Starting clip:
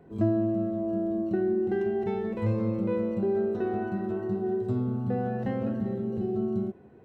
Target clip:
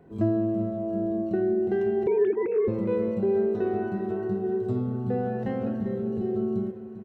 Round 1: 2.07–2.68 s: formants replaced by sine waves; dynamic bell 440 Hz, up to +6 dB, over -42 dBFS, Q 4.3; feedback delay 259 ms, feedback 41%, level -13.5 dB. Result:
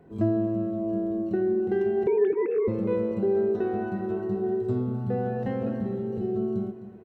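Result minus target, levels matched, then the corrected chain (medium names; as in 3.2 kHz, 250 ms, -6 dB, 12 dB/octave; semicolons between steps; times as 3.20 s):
echo 138 ms early
2.07–2.68 s: formants replaced by sine waves; dynamic bell 440 Hz, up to +6 dB, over -42 dBFS, Q 4.3; feedback delay 397 ms, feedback 41%, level -13.5 dB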